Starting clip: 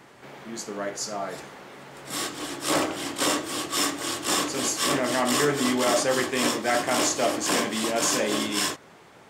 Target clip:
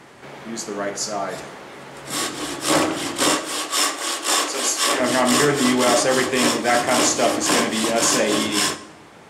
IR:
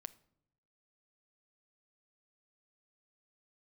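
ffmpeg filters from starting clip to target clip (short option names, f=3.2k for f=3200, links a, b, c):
-filter_complex "[0:a]asettb=1/sr,asplit=3[a][b][c];[a]atrim=end=3.354[d];[b]atrim=start=3.35:end=5,asetpts=PTS-STARTPTS,afade=t=in:d=0.004:c=qsin,afade=t=out:st=1.646:d=0.004:c=qsin,highpass=440[e];[c]atrim=start=4.996[f];[d][e]acrossfade=d=0.004:c1=hsin:c2=qsin[g];[g][f]acrossfade=d=0.004:c1=qsin:c2=hsin[h];[1:a]atrim=start_sample=2205,asetrate=22932,aresample=44100[i];[h][i]afir=irnorm=-1:irlink=0,volume=7.5dB"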